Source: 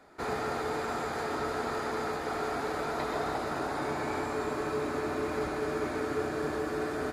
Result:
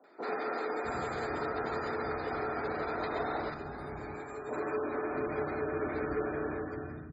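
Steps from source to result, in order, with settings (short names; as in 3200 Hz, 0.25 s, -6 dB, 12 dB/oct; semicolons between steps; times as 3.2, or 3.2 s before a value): ending faded out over 0.77 s; spectral gate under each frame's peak -25 dB strong; 3.5–4.49 resonator 410 Hz, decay 0.15 s, harmonics all, mix 70%; three bands offset in time mids, highs, lows 40/660 ms, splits 230/940 Hz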